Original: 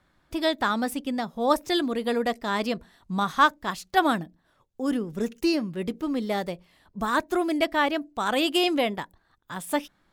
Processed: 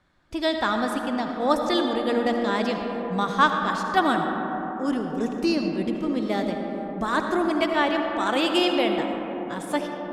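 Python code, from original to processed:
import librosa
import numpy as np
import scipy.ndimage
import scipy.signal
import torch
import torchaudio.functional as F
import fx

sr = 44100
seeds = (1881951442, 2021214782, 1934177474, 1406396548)

y = scipy.signal.sosfilt(scipy.signal.butter(2, 8500.0, 'lowpass', fs=sr, output='sos'), x)
y = fx.rev_freeverb(y, sr, rt60_s=4.9, hf_ratio=0.25, predelay_ms=35, drr_db=3.0)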